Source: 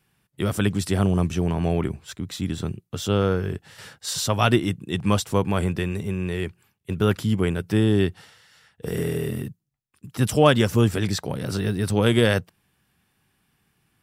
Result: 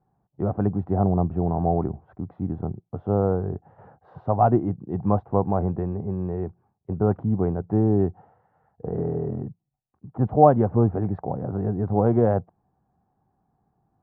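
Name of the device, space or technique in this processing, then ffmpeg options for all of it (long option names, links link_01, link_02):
under water: -af "lowpass=frequency=1000:width=0.5412,lowpass=frequency=1000:width=1.3066,equalizer=frequency=750:width_type=o:width=0.37:gain=11,volume=-1dB"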